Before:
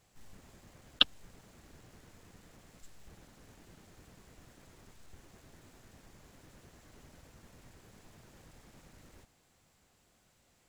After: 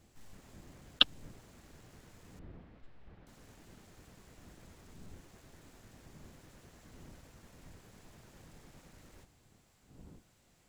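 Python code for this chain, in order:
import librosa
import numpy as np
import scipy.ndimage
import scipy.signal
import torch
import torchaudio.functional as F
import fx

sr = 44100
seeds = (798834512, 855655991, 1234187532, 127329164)

y = fx.dmg_wind(x, sr, seeds[0], corner_hz=200.0, level_db=-60.0)
y = fx.air_absorb(y, sr, metres=360.0, at=(2.39, 3.27))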